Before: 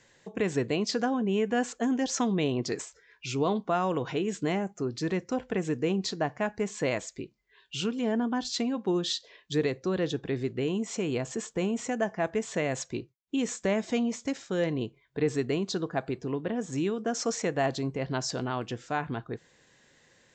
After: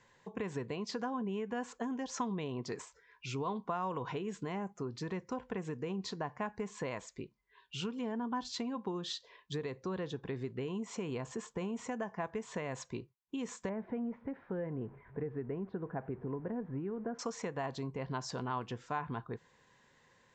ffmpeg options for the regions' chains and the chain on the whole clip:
-filter_complex "[0:a]asettb=1/sr,asplit=3[a][b][c];[a]atrim=end=13.694[d];[b]atrim=start=13.69:end=17.19,asetpts=PTS-STARTPTS,afade=t=in:d=0.004:c=qsin,afade=t=out:st=3.496:d=0.004:c=qsin,aeval=exprs='val(0)+0.5*0.00596*sgn(val(0))':c=same,lowpass=f=1.7k:w=0.5412,lowpass=f=1.7k:w=1.3066,equalizer=f=1.1k:w=2:g=-9[e];[c]atrim=start=17.186[f];[d][e]acrossfade=d=0.004:c1=hsin:c2=qsin[g];[g][f]acrossfade=d=0.004:c1=qsin:c2=hsin,highshelf=f=3.5k:g=-8,acompressor=threshold=-30dB:ratio=6,equalizer=f=315:t=o:w=0.33:g=-6,equalizer=f=630:t=o:w=0.33:g=-4,equalizer=f=1k:t=o:w=0.33:g=10,volume=-3.5dB"

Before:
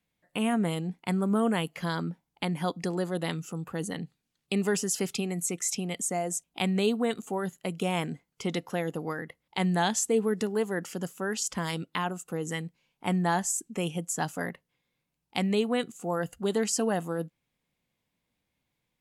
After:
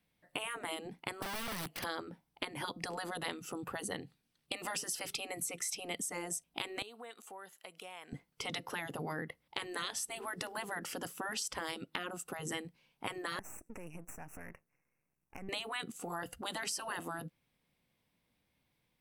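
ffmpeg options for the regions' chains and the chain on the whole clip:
-filter_complex "[0:a]asettb=1/sr,asplit=3[a][b][c];[a]atrim=end=1.224[d];[b]atrim=start=1.22:end=1.84,asetpts=PTS-STARTPTS,afade=t=in:d=0.004:c=qsin,afade=t=out:st=0.616:d=0.004:c=qsin,acompressor=threshold=-31dB:ratio=10:attack=3.2:release=140:knee=1:detection=peak,aeval=exprs='(mod(59.6*val(0)+1,2)-1)/59.6':c=same[e];[c]atrim=start=1.836[f];[d][e]acrossfade=d=0.004:c1=hsin:c2=qsin[g];[g][f]acrossfade=d=0.004:c1=qsin:c2=hsin,asettb=1/sr,asplit=3[h][i][j];[h]atrim=end=6.824[k];[i]atrim=start=6.82:end=8.13,asetpts=PTS-STARTPTS,afade=t=in:d=0.004:c=qsin,afade=t=out:st=1.306:d=0.004:c=qsin,highpass=710,acompressor=threshold=-52dB:ratio=3:attack=3.2:release=140:knee=1:detection=peak[l];[j]atrim=start=8.126[m];[k][l]acrossfade=d=0.004:c1=hsin:c2=qsin[n];[n][m]acrossfade=d=0.004:c1=qsin:c2=hsin,asettb=1/sr,asplit=3[o][p][q];[o]atrim=end=13.394[r];[p]atrim=start=13.39:end=15.49,asetpts=PTS-STARTPTS,afade=t=in:d=0.004:c=qsin,afade=t=out:st=2.096:d=0.004:c=qsin,acompressor=threshold=-42dB:ratio=8:attack=3.2:release=140:knee=1:detection=peak,aeval=exprs='max(val(0),0)':c=same,asuperstop=centerf=3900:order=12:qfactor=1.4[s];[q]atrim=start=15.486[t];[r][s]acrossfade=d=0.004:c1=hsin:c2=qsin[u];[u][t]acrossfade=d=0.004:c1=qsin:c2=hsin,afftfilt=real='re*lt(hypot(re,im),0.112)':imag='im*lt(hypot(re,im),0.112)':win_size=1024:overlap=0.75,equalizer=f=6.9k:w=7.8:g=-12,acompressor=threshold=-37dB:ratio=6,volume=2dB"

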